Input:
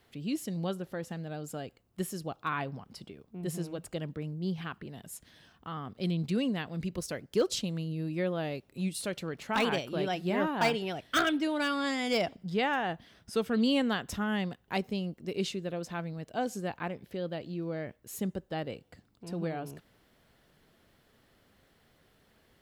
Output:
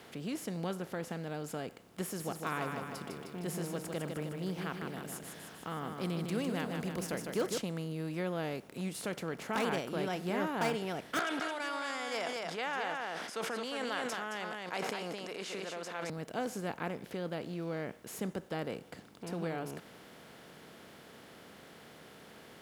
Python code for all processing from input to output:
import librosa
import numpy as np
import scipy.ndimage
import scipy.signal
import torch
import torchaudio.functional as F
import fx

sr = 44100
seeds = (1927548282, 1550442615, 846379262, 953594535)

y = fx.chain(x, sr, fx.high_shelf(hz=11000.0, db=9.0),
    fx.echo_feedback(ms=154, feedback_pct=46, wet_db=-8.0), at=(2.04, 7.58))
y = fx.chain(y, sr, fx.bandpass_edges(low_hz=750.0, high_hz=7400.0),
    fx.echo_single(ms=218, db=-8.0),
    fx.sustainer(db_per_s=24.0), at=(11.19, 16.1))
y = fx.bin_compress(y, sr, power=0.6)
y = fx.dynamic_eq(y, sr, hz=3500.0, q=1.3, threshold_db=-47.0, ratio=4.0, max_db=-5)
y = scipy.signal.sosfilt(scipy.signal.butter(2, 71.0, 'highpass', fs=sr, output='sos'), y)
y = F.gain(torch.from_numpy(y), -7.5).numpy()